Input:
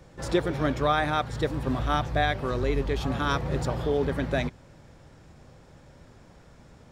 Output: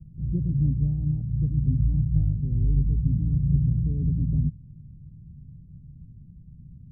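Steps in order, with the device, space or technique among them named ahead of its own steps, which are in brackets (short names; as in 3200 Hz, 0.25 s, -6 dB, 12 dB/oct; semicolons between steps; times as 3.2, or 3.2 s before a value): the neighbour's flat through the wall (LPF 180 Hz 24 dB/oct; bell 150 Hz +4 dB 0.77 oct); gain +7 dB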